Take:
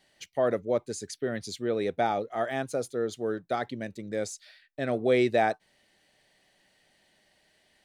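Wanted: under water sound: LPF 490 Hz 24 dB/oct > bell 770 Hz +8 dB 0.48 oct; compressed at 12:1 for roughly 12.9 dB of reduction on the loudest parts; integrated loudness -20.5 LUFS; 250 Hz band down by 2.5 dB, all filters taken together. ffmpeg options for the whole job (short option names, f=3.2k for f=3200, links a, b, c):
-af "equalizer=f=250:t=o:g=-3.5,acompressor=threshold=-33dB:ratio=12,lowpass=f=490:w=0.5412,lowpass=f=490:w=1.3066,equalizer=f=770:t=o:w=0.48:g=8,volume=21.5dB"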